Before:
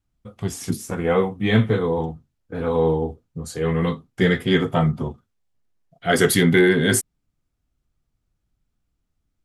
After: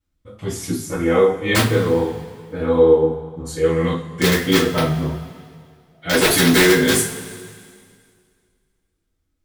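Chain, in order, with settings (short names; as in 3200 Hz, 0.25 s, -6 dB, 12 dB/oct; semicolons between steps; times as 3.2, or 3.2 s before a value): wrapped overs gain 7.5 dB; two-slope reverb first 0.33 s, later 2.1 s, from -18 dB, DRR -9.5 dB; gain -7 dB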